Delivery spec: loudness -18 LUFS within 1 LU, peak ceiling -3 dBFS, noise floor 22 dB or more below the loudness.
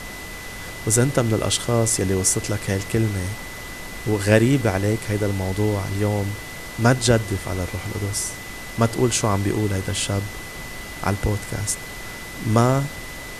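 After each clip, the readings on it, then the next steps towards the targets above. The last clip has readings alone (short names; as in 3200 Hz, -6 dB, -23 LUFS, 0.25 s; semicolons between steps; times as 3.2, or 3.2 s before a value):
steady tone 2000 Hz; tone level -37 dBFS; noise floor -35 dBFS; noise floor target -44 dBFS; loudness -22.0 LUFS; peak -2.0 dBFS; loudness target -18.0 LUFS
-> notch 2000 Hz, Q 30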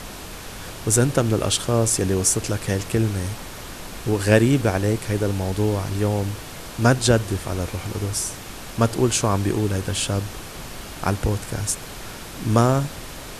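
steady tone none; noise floor -37 dBFS; noise floor target -44 dBFS
-> noise print and reduce 7 dB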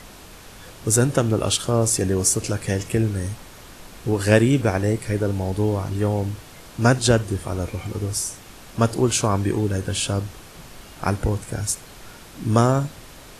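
noise floor -43 dBFS; noise floor target -44 dBFS
-> noise print and reduce 6 dB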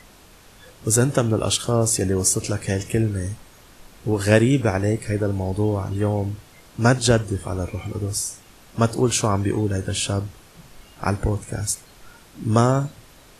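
noise floor -49 dBFS; loudness -22.0 LUFS; peak -2.0 dBFS; loudness target -18.0 LUFS
-> gain +4 dB; limiter -3 dBFS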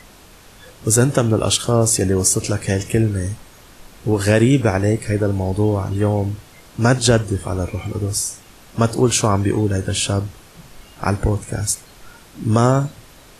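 loudness -18.5 LUFS; peak -3.0 dBFS; noise floor -45 dBFS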